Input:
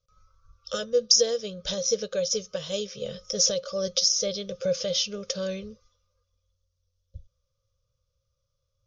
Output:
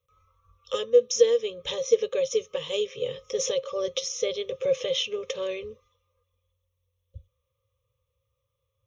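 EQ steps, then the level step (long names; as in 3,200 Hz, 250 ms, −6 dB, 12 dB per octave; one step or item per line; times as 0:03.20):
high-pass filter 92 Hz 12 dB per octave
parametric band 6,200 Hz −6 dB 0.64 octaves
phaser with its sweep stopped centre 980 Hz, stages 8
+6.5 dB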